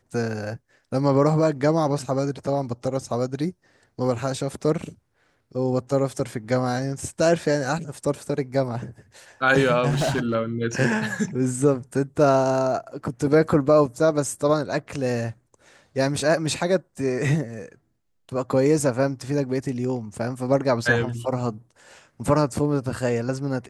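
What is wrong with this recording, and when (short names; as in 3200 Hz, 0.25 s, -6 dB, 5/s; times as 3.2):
9.89–10.35 clipped -19 dBFS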